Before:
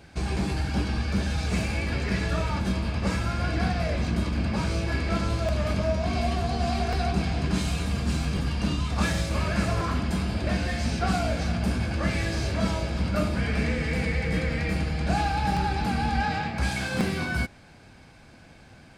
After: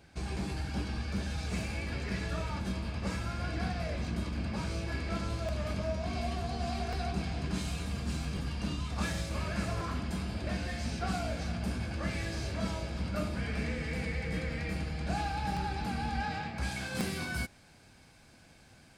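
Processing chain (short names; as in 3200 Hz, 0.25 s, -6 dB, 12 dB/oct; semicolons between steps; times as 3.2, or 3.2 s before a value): high shelf 4900 Hz +2.5 dB, from 16.95 s +11.5 dB; gain -8.5 dB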